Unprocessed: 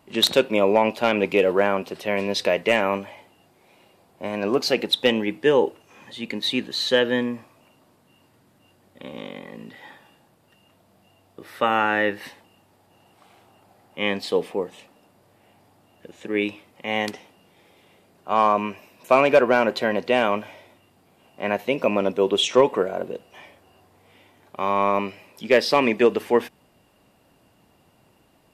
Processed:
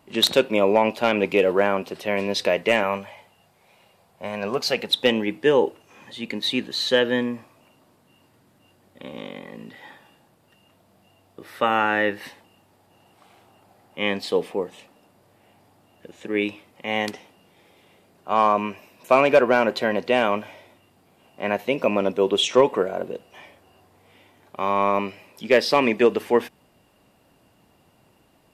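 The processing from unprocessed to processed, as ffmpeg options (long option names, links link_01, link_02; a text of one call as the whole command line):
ffmpeg -i in.wav -filter_complex "[0:a]asettb=1/sr,asplit=3[link_01][link_02][link_03];[link_01]atrim=end=2.834[link_04];[link_02]atrim=start=2.83:end=4.9,asetpts=PTS-STARTPTS,afade=type=in:duration=0.004:curve=qsin,afade=type=out:start_time=2.066:duration=0.004:curve=qsin,equalizer=frequency=310:width_type=o:width=0.55:gain=-13.5[link_05];[link_03]atrim=start=4.896[link_06];[link_04][link_05]acrossfade=duration=0.004:curve1=hsin:curve2=qsin[link_07];[link_07][link_06]acrossfade=duration=0.004:curve1=qsin:curve2=hsin" out.wav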